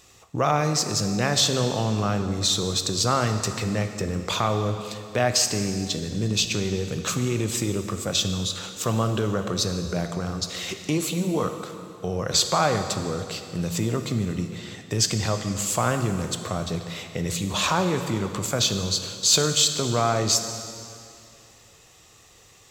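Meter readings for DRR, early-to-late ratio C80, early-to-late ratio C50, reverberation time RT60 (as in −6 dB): 6.5 dB, 8.5 dB, 8.0 dB, 2.5 s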